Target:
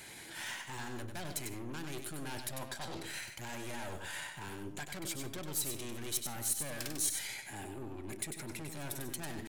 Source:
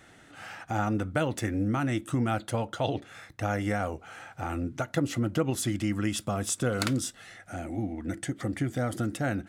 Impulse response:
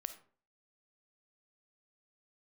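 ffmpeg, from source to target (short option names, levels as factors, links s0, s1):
-filter_complex "[0:a]aeval=exprs='(tanh(39.8*val(0)+0.5)-tanh(0.5))/39.8':c=same,areverse,acompressor=threshold=0.00631:ratio=6,areverse,highshelf=f=11000:g=-8.5,crystalizer=i=5:c=0,asetrate=50951,aresample=44100,atempo=0.865537,asplit=2[s0][s1];[1:a]atrim=start_sample=2205,adelay=97[s2];[s1][s2]afir=irnorm=-1:irlink=0,volume=0.668[s3];[s0][s3]amix=inputs=2:normalize=0,volume=1.19"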